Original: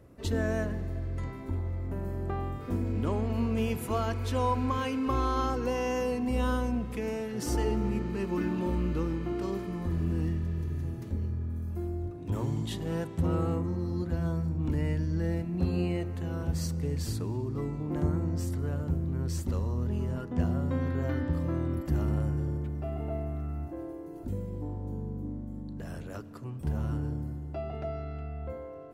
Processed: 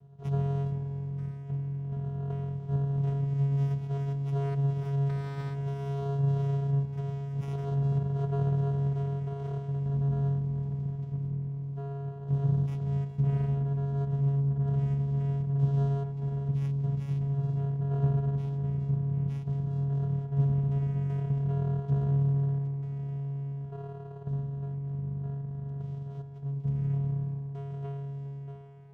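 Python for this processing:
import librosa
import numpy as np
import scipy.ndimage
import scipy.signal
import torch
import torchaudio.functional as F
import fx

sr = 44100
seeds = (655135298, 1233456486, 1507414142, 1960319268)

p1 = fx.phaser_stages(x, sr, stages=2, low_hz=640.0, high_hz=1300.0, hz=0.51, feedback_pct=5)
p2 = fx.vocoder(p1, sr, bands=4, carrier='square', carrier_hz=139.0)
p3 = p2 + fx.echo_single(p2, sr, ms=412, db=-16.5, dry=0)
p4 = fx.running_max(p3, sr, window=9)
y = p4 * librosa.db_to_amplitude(5.5)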